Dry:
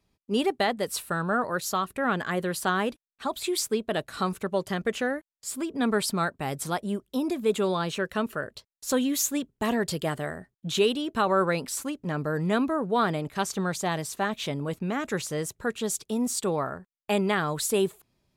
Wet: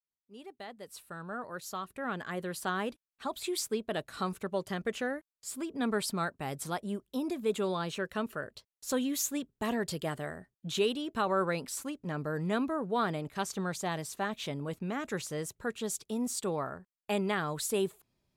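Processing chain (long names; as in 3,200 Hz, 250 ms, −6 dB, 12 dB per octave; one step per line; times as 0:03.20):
fade in at the beginning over 3.17 s
level −6 dB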